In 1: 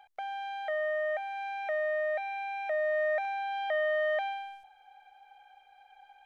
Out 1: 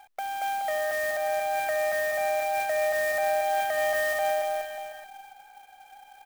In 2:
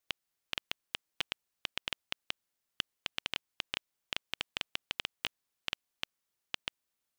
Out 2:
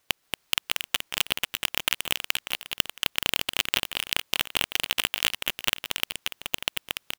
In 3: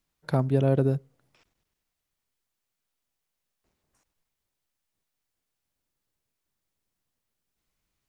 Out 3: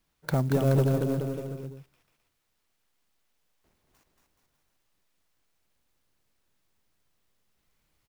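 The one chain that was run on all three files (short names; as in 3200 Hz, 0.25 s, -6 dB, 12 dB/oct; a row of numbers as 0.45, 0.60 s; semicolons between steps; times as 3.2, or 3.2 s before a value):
in parallel at +2.5 dB: compressor, threshold -33 dBFS; on the sum: soft clip -12 dBFS; bouncing-ball echo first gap 0.23 s, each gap 0.85×, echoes 5; clock jitter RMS 0.029 ms; match loudness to -27 LUFS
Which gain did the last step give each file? -2.5, +8.5, -2.5 dB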